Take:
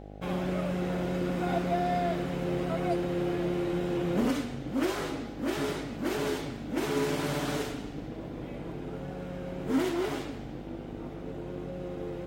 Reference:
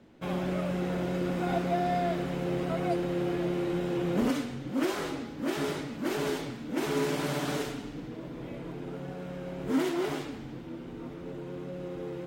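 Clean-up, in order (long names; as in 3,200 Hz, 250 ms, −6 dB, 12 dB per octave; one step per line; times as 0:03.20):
hum removal 50.6 Hz, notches 16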